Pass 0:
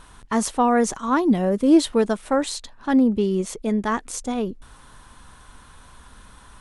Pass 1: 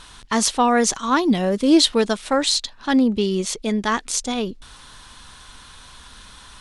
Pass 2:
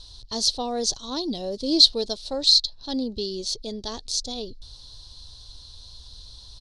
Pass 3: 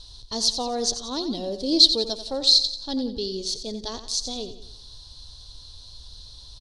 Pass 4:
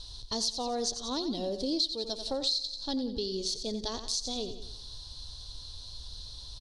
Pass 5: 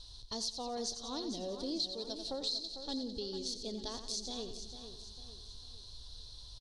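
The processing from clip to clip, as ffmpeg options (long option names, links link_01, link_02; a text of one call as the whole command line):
ffmpeg -i in.wav -af "equalizer=frequency=4200:width=0.62:gain=13" out.wav
ffmpeg -i in.wav -af "firequalizer=gain_entry='entry(110,0);entry(180,-18);entry(260,-13);entry(420,-10);entry(610,-10);entry(1300,-26);entry(2200,-27);entry(4200,5);entry(7300,-13);entry(12000,-17)':delay=0.05:min_phase=1,volume=2dB" out.wav
ffmpeg -i in.wav -af "aecho=1:1:89|178|267|356|445:0.282|0.127|0.0571|0.0257|0.0116" out.wav
ffmpeg -i in.wav -af "acompressor=threshold=-30dB:ratio=4" out.wav
ffmpeg -i in.wav -af "aecho=1:1:450|900|1350|1800|2250:0.316|0.136|0.0585|0.0251|0.0108,volume=-7dB" out.wav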